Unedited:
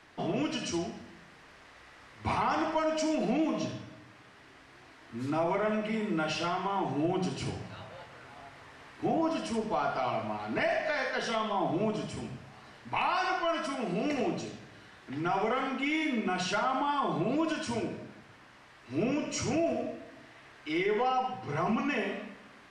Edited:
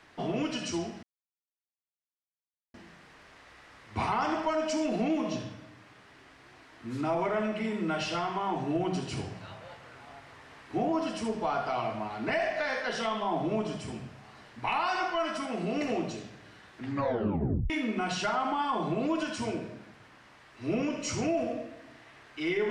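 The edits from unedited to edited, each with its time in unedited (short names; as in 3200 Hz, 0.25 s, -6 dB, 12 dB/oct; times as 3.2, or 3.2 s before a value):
1.03 insert silence 1.71 s
15.11 tape stop 0.88 s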